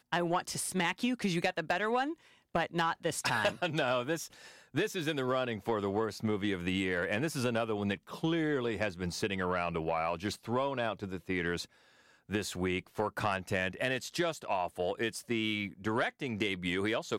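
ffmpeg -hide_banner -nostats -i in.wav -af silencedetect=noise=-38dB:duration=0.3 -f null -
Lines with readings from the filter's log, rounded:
silence_start: 2.13
silence_end: 2.55 | silence_duration: 0.42
silence_start: 4.26
silence_end: 4.75 | silence_duration: 0.49
silence_start: 11.64
silence_end: 12.31 | silence_duration: 0.67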